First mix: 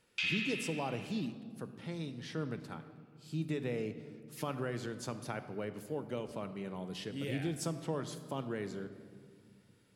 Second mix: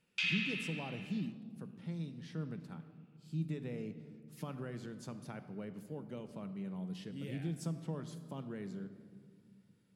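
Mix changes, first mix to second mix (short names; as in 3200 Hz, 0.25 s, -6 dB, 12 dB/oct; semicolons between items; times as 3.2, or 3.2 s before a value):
speech -9.0 dB; master: add bell 180 Hz +12 dB 0.82 oct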